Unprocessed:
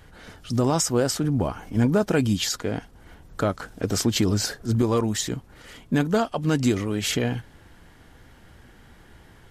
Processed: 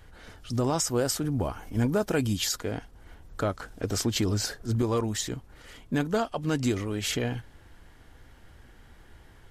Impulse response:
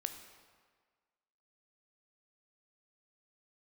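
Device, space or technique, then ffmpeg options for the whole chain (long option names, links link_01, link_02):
low shelf boost with a cut just above: -filter_complex "[0:a]lowshelf=frequency=62:gain=6.5,equalizer=frequency=180:width_type=o:width=0.97:gain=-4,asettb=1/sr,asplit=3[link_01][link_02][link_03];[link_01]atrim=end=0.874[link_04];[link_02]atrim=start=0.87:end=2.75,asetpts=PTS-STARTPTS,afade=type=in:duration=0.004:curve=qsin,afade=type=out:start_time=1.876:duration=0.004:curve=qsin,highshelf=frequency=11000:gain=10[link_05];[link_03]atrim=start=2.746[link_06];[link_04][link_05]acrossfade=duration=0.004:curve1=hsin:curve2=qsin[link_07];[link_07][link_06]acrossfade=duration=0.004:curve1=qsin:curve2=hsin,volume=-4dB"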